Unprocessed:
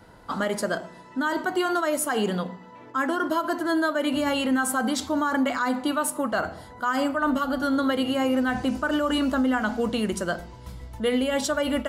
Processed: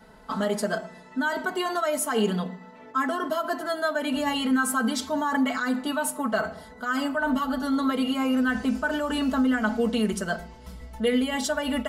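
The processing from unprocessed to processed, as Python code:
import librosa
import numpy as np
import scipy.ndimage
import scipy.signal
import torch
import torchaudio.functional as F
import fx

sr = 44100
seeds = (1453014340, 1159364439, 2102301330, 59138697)

y = x + 0.96 * np.pad(x, (int(4.6 * sr / 1000.0), 0))[:len(x)]
y = F.gain(torch.from_numpy(y), -3.5).numpy()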